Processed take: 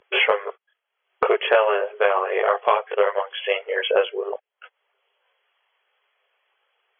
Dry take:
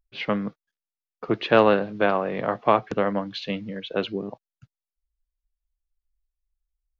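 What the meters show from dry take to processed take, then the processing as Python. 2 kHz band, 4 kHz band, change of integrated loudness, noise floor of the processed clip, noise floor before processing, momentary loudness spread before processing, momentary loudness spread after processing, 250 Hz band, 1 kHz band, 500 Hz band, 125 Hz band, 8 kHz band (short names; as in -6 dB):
+6.5 dB, +6.5 dB, +2.5 dB, -81 dBFS, under -85 dBFS, 13 LU, 9 LU, under -10 dB, +2.5 dB, +3.5 dB, under -25 dB, n/a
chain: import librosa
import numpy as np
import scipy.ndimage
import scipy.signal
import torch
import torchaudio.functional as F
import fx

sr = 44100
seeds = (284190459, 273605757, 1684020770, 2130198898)

y = fx.chorus_voices(x, sr, voices=4, hz=0.78, base_ms=20, depth_ms=2.0, mix_pct=55)
y = fx.brickwall_bandpass(y, sr, low_hz=380.0, high_hz=3400.0)
y = fx.band_squash(y, sr, depth_pct=100)
y = y * 10.0 ** (7.5 / 20.0)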